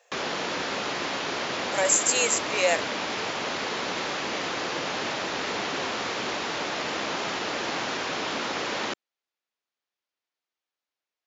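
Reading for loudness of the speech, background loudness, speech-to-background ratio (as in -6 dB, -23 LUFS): -23.5 LUFS, -29.0 LUFS, 5.5 dB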